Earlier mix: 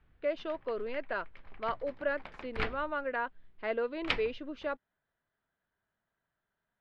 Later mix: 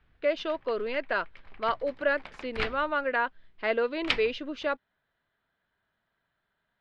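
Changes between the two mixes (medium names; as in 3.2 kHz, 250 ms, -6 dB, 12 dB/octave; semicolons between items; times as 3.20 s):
speech +5.0 dB; master: add treble shelf 2.4 kHz +8.5 dB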